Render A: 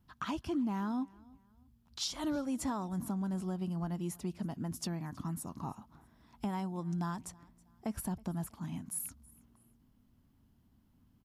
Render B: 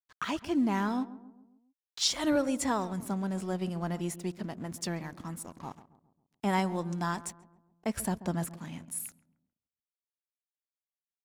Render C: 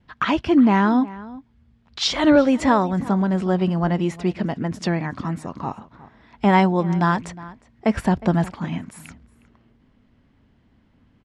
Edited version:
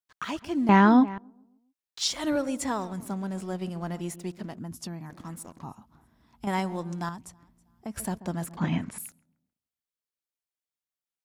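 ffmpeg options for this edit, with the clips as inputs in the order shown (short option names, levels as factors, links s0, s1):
-filter_complex "[2:a]asplit=2[s0][s1];[0:a]asplit=3[s2][s3][s4];[1:a]asplit=6[s5][s6][s7][s8][s9][s10];[s5]atrim=end=0.692[s11];[s0]atrim=start=0.688:end=1.182[s12];[s6]atrim=start=1.178:end=4.592[s13];[s2]atrim=start=4.588:end=5.102[s14];[s7]atrim=start=5.098:end=5.632[s15];[s3]atrim=start=5.628:end=6.472[s16];[s8]atrim=start=6.468:end=7.092[s17];[s4]atrim=start=7.088:end=7.962[s18];[s9]atrim=start=7.958:end=8.572[s19];[s1]atrim=start=8.568:end=8.982[s20];[s10]atrim=start=8.978[s21];[s11][s12]acrossfade=d=0.004:c1=hsin:c2=hsin[s22];[s22][s13]acrossfade=d=0.004:c1=hsin:c2=hsin[s23];[s23][s14]acrossfade=d=0.004:c1=hsin:c2=hsin[s24];[s24][s15]acrossfade=d=0.004:c1=hsin:c2=hsin[s25];[s25][s16]acrossfade=d=0.004:c1=hsin:c2=hsin[s26];[s26][s17]acrossfade=d=0.004:c1=hsin:c2=hsin[s27];[s27][s18]acrossfade=d=0.004:c1=hsin:c2=hsin[s28];[s28][s19]acrossfade=d=0.004:c1=hsin:c2=hsin[s29];[s29][s20]acrossfade=d=0.004:c1=hsin:c2=hsin[s30];[s30][s21]acrossfade=d=0.004:c1=hsin:c2=hsin"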